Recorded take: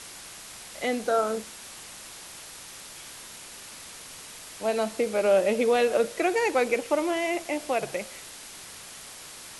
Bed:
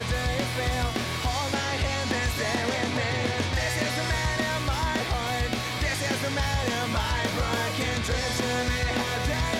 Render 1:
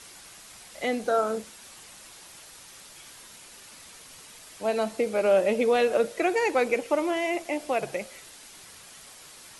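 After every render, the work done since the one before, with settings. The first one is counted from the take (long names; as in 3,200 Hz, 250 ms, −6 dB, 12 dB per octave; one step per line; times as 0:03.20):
broadband denoise 6 dB, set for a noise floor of −44 dBFS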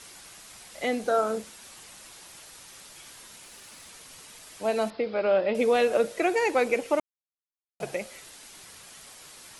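0:03.43–0:03.88: log-companded quantiser 6 bits
0:04.90–0:05.55: Chebyshev low-pass with heavy ripple 5,100 Hz, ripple 3 dB
0:07.00–0:07.80: silence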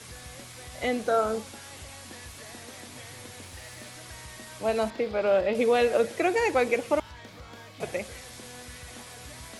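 mix in bed −19 dB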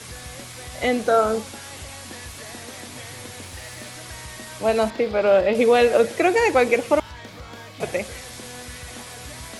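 level +6.5 dB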